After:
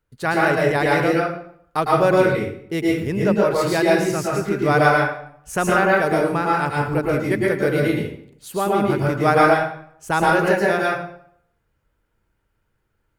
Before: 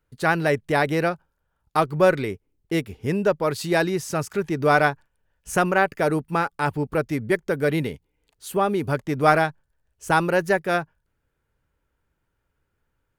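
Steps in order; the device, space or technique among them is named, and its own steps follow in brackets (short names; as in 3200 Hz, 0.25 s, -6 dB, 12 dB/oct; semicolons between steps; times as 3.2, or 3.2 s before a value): bathroom (reverb RT60 0.65 s, pre-delay 0.104 s, DRR -4 dB); gain -1.5 dB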